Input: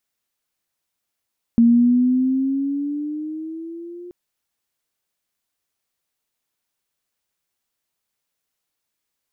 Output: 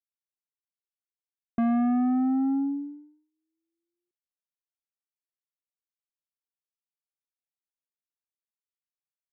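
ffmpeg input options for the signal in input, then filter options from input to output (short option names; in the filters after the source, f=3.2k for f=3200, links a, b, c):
-f lavfi -i "aevalsrc='pow(10,(-9-24.5*t/2.53)/20)*sin(2*PI*231*2.53/(7.5*log(2)/12)*(exp(7.5*log(2)/12*t/2.53)-1))':d=2.53:s=44100"
-af "agate=range=-54dB:threshold=-23dB:ratio=16:detection=peak,aresample=16000,asoftclip=type=tanh:threshold=-22dB,aresample=44100"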